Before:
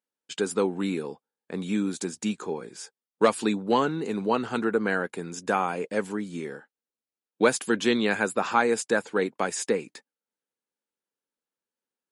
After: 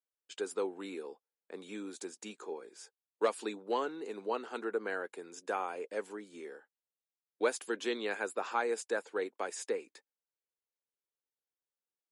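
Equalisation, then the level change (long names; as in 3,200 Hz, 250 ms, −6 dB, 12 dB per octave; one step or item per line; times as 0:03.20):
four-pole ladder high-pass 290 Hz, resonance 25%
−5.0 dB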